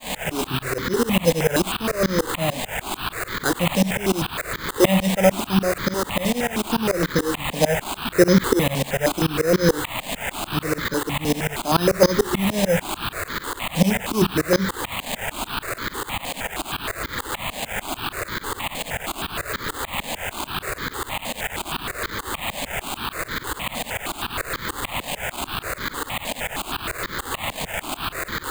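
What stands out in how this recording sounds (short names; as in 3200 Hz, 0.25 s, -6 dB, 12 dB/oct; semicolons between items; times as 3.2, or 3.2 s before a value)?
a quantiser's noise floor 6-bit, dither triangular; tremolo saw up 6.8 Hz, depth 100%; aliases and images of a low sample rate 5600 Hz, jitter 0%; notches that jump at a steady rate 6.4 Hz 370–2700 Hz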